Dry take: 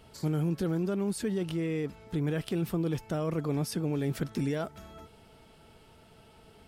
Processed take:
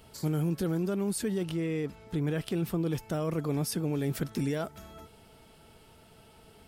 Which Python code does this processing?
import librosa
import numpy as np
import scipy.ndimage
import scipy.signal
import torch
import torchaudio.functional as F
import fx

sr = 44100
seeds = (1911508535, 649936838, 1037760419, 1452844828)

y = fx.high_shelf(x, sr, hz=8600.0, db=fx.steps((0.0, 9.5), (1.43, 2.5), (2.88, 8.5)))